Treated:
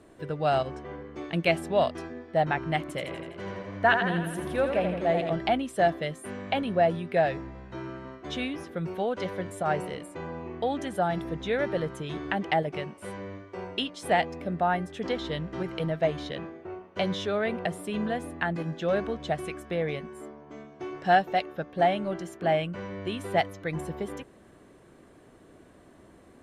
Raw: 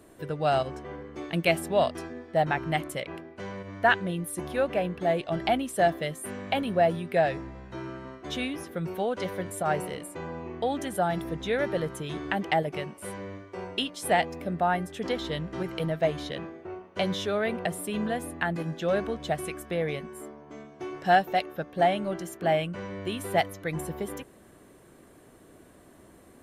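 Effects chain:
high-frequency loss of the air 56 metres
0:02.80–0:05.33: feedback echo with a swinging delay time 83 ms, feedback 64%, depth 62 cents, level −6.5 dB

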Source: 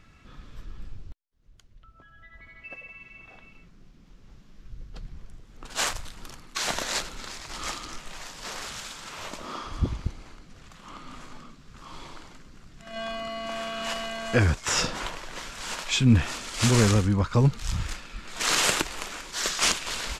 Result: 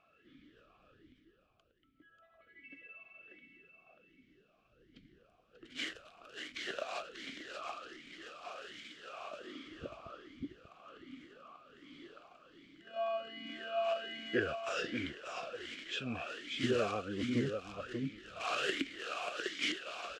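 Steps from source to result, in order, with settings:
repeating echo 588 ms, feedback 18%, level −6 dB
formant filter swept between two vowels a-i 1.3 Hz
level +2.5 dB

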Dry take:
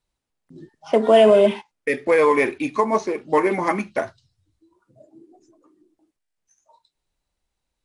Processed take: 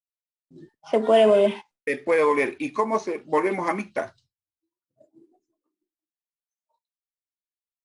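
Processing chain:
downward expander −44 dBFS
low-shelf EQ 120 Hz −4 dB
level −3.5 dB

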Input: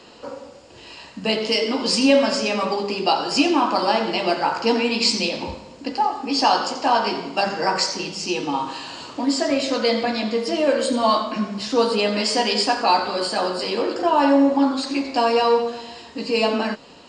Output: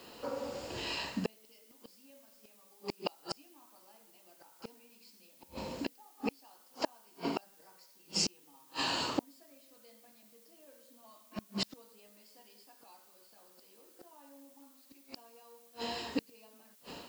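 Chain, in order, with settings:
automatic gain control gain up to 13 dB
gate with flip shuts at −11 dBFS, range −40 dB
background noise blue −56 dBFS
level −7.5 dB

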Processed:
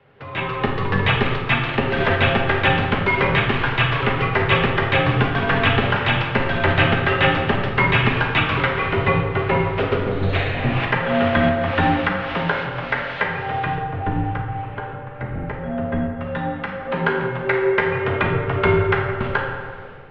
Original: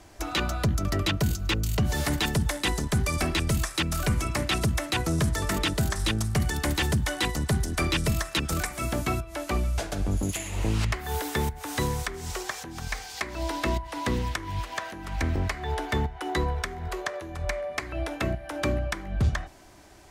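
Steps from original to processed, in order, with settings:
0:13.75–0:16.13: spectral tilt −4 dB per octave
automatic gain control gain up to 15.5 dB
convolution reverb RT60 1.7 s, pre-delay 5 ms, DRR −1.5 dB
bad sample-rate conversion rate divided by 4×, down none, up zero stuff
single-sideband voice off tune −200 Hz 300–3,100 Hz
level −3.5 dB

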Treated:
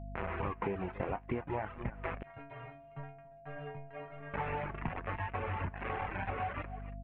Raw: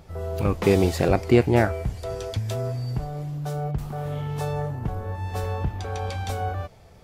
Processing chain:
parametric band 980 Hz +13 dB 0.71 octaves
bit reduction 4 bits
Butterworth low-pass 2,600 Hz 48 dB per octave
single-tap delay 281 ms −14.5 dB
flanger 0.56 Hz, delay 8.2 ms, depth 8.5 ms, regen +54%
reverb reduction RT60 0.9 s
mains hum 50 Hz, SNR 14 dB
0:02.23–0:04.34: stiff-string resonator 140 Hz, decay 0.58 s, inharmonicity 0.008
steady tone 680 Hz −52 dBFS
downward compressor 16 to 1, threshold −31 dBFS, peak gain reduction 17 dB
level −1 dB

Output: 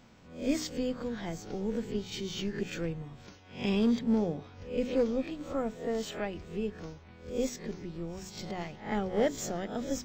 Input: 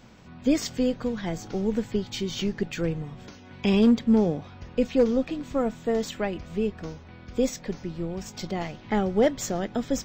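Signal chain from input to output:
peak hold with a rise ahead of every peak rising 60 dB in 0.41 s
hum removal 61.83 Hz, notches 7
level −7.5 dB

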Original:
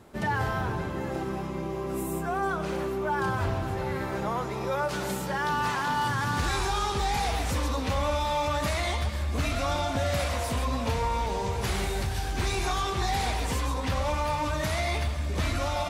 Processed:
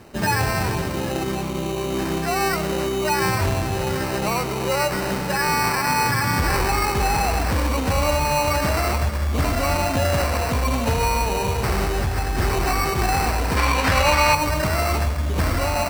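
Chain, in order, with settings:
high-shelf EQ 12,000 Hz +6.5 dB
decimation without filtering 13×
0:13.57–0:14.35: parametric band 2,200 Hz +9 dB 2.9 octaves
level +7 dB

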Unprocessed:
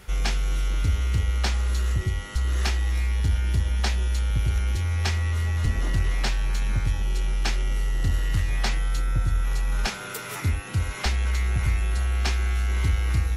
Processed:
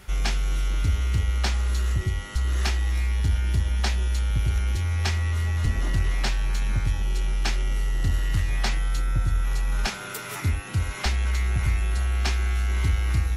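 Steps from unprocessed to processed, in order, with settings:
notch filter 480 Hz, Q 12

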